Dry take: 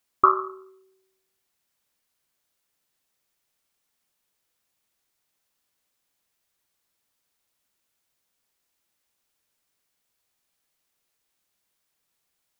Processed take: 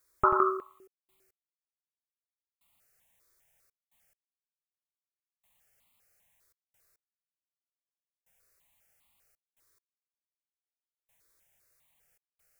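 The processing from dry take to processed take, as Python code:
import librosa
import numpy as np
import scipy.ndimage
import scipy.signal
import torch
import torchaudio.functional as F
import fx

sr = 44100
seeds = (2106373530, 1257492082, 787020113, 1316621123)

y = fx.low_shelf(x, sr, hz=130.0, db=5.0)
y = y + 10.0 ** (-5.5 / 20.0) * np.pad(y, (int(90 * sr / 1000.0), 0))[:len(y)]
y = fx.step_gate(y, sr, bpm=69, pattern='xxxx.x......x', floor_db=-60.0, edge_ms=4.5)
y = fx.phaser_held(y, sr, hz=5.0, low_hz=780.0, high_hz=1600.0)
y = F.gain(torch.from_numpy(y), 6.0).numpy()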